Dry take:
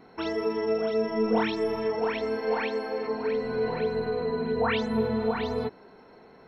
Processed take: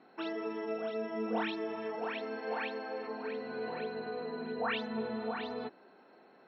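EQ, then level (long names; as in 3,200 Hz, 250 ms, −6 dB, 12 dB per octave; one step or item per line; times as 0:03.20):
loudspeaker in its box 380–3,600 Hz, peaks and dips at 450 Hz −10 dB, 670 Hz −4 dB, 980 Hz −9 dB, 1,400 Hz −4 dB, 2,100 Hz −9 dB, 3,200 Hz −4 dB
0.0 dB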